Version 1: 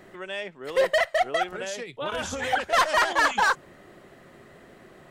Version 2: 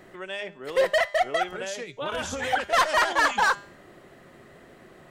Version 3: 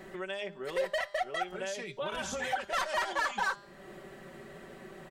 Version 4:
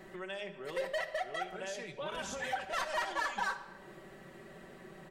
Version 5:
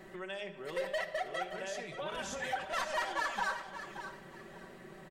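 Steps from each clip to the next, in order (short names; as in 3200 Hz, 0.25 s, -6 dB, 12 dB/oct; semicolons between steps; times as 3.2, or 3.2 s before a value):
de-hum 201.1 Hz, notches 40
comb 5.2 ms; compressor 2:1, threshold -38 dBFS, peak gain reduction 12.5 dB
shoebox room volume 1100 m³, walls mixed, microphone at 0.6 m; gain -4 dB
feedback echo 0.575 s, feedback 26%, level -11 dB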